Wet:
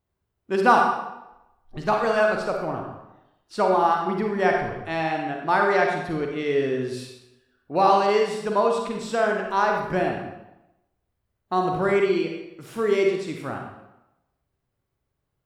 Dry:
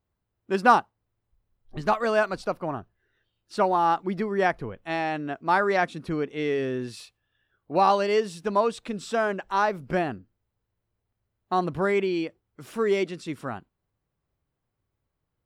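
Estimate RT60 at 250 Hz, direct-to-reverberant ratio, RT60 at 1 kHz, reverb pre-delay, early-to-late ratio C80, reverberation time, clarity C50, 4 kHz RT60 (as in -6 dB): 0.90 s, 1.0 dB, 0.90 s, 38 ms, 5.5 dB, 0.95 s, 2.5 dB, 0.75 s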